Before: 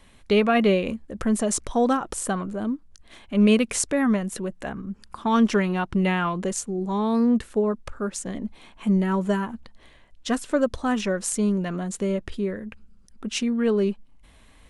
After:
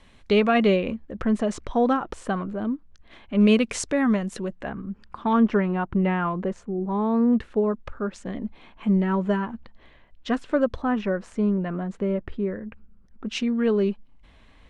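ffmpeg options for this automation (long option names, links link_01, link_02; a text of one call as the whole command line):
ffmpeg -i in.wav -af "asetnsamples=nb_out_samples=441:pad=0,asendcmd='0.76 lowpass f 3200;3.41 lowpass f 6000;4.55 lowpass f 3000;5.33 lowpass f 1700;7.33 lowpass f 3100;10.82 lowpass f 1900;13.27 lowpass f 4300',lowpass=6500" out.wav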